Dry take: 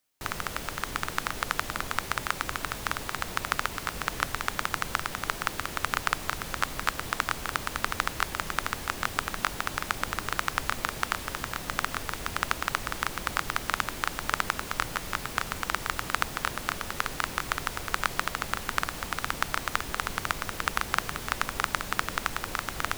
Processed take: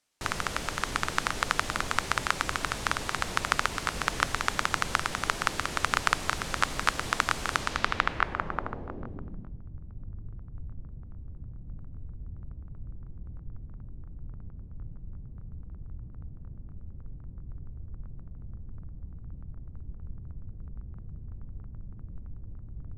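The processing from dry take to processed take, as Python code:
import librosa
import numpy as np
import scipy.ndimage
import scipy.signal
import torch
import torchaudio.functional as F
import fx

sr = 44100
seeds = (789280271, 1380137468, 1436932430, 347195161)

y = fx.filter_sweep_lowpass(x, sr, from_hz=8500.0, to_hz=110.0, start_s=7.55, end_s=9.63, q=0.89)
y = y * 10.0 ** (2.0 / 20.0)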